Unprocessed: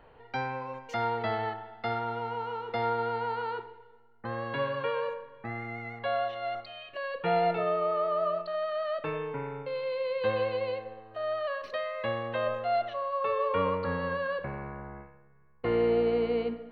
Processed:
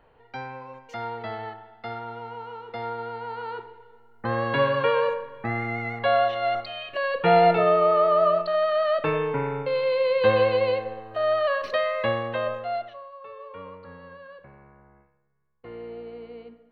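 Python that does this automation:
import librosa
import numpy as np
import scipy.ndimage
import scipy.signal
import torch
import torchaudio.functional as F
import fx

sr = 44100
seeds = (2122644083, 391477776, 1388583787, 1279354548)

y = fx.gain(x, sr, db=fx.line((3.21, -3.0), (4.3, 9.0), (11.92, 9.0), (12.76, -1.5), (13.17, -13.0)))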